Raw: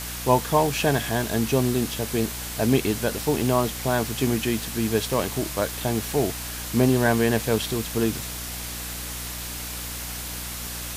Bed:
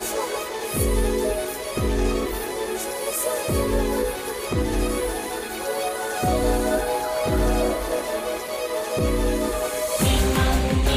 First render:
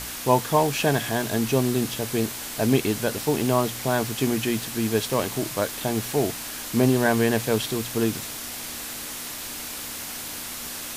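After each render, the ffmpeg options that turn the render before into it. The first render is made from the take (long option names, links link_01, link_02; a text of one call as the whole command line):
ffmpeg -i in.wav -af "bandreject=frequency=60:width_type=h:width=4,bandreject=frequency=120:width_type=h:width=4,bandreject=frequency=180:width_type=h:width=4" out.wav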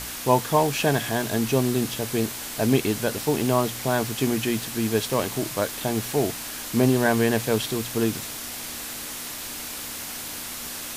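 ffmpeg -i in.wav -af anull out.wav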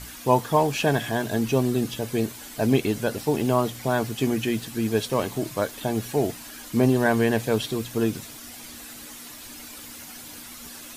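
ffmpeg -i in.wav -af "afftdn=noise_reduction=10:noise_floor=-35" out.wav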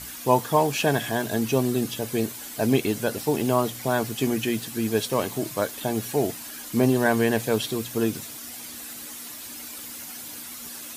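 ffmpeg -i in.wav -af "highpass=frequency=100:poles=1,highshelf=frequency=7500:gain=6" out.wav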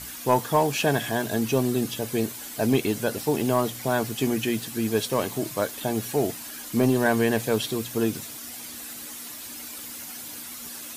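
ffmpeg -i in.wav -af "asoftclip=type=tanh:threshold=-8dB" out.wav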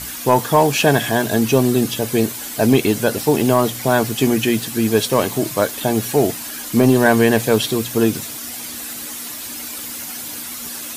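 ffmpeg -i in.wav -af "volume=8.5dB,alimiter=limit=-3dB:level=0:latency=1" out.wav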